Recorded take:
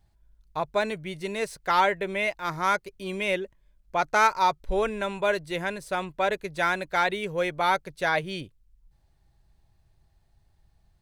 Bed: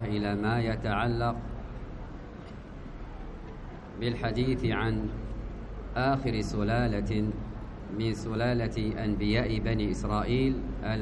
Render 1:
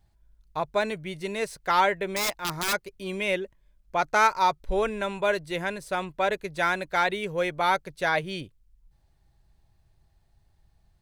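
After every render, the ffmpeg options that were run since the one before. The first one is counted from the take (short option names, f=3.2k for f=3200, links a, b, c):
-filter_complex "[0:a]asplit=3[a][b][c];[a]afade=t=out:st=2.13:d=0.02[d];[b]aeval=exprs='(mod(10*val(0)+1,2)-1)/10':c=same,afade=t=in:st=2.13:d=0.02,afade=t=out:st=2.72:d=0.02[e];[c]afade=t=in:st=2.72:d=0.02[f];[d][e][f]amix=inputs=3:normalize=0"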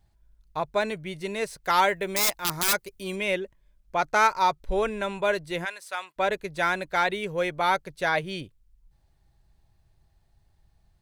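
-filter_complex "[0:a]asettb=1/sr,asplit=3[a][b][c];[a]atrim=end=1.644[d];[b]atrim=start=1.64:end=3.16,asetpts=PTS-STARTPTS,afade=t=in:d=0.004:c=qsin,afade=t=out:st=1.516:d=0.004:c=qsin,highshelf=f=6.4k:g=10[e];[c]atrim=start=3.156[f];[d][e]acrossfade=d=0.004:c1=hsin:c2=qsin[g];[g][f]acrossfade=d=0.004:c1=qsin:c2=hsin,asplit=3[h][i][j];[h]afade=t=out:st=5.64:d=0.02[k];[i]highpass=1k,afade=t=in:st=5.64:d=0.02,afade=t=out:st=6.16:d=0.02[l];[j]afade=t=in:st=6.16:d=0.02[m];[k][l][m]amix=inputs=3:normalize=0"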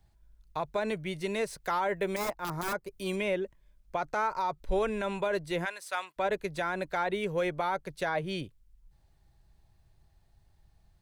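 -filter_complex "[0:a]acrossover=split=270|1500[a][b][c];[c]acompressor=threshold=-36dB:ratio=10[d];[a][b][d]amix=inputs=3:normalize=0,alimiter=limit=-21dB:level=0:latency=1:release=48"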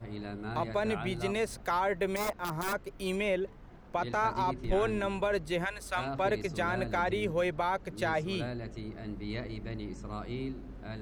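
-filter_complex "[1:a]volume=-10.5dB[a];[0:a][a]amix=inputs=2:normalize=0"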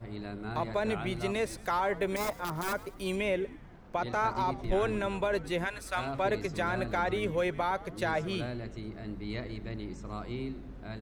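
-filter_complex "[0:a]asplit=5[a][b][c][d][e];[b]adelay=108,afreqshift=-120,volume=-18dB[f];[c]adelay=216,afreqshift=-240,volume=-24dB[g];[d]adelay=324,afreqshift=-360,volume=-30dB[h];[e]adelay=432,afreqshift=-480,volume=-36.1dB[i];[a][f][g][h][i]amix=inputs=5:normalize=0"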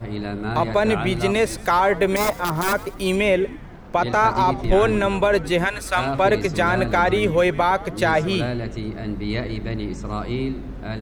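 -af "volume=12dB"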